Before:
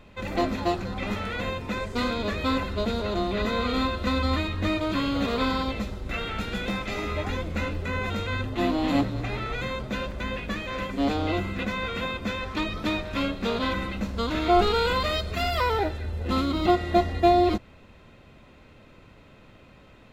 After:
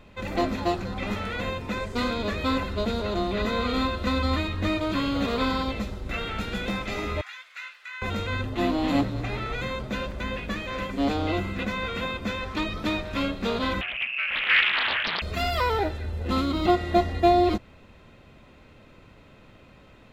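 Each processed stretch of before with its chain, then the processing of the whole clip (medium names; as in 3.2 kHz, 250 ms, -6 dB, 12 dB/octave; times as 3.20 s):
7.21–8.02 s: high-pass 1.5 kHz 24 dB/octave + tilt EQ -2.5 dB/octave
13.81–15.22 s: distance through air 480 m + frequency inversion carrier 2.7 kHz + loudspeaker Doppler distortion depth 0.84 ms
whole clip: none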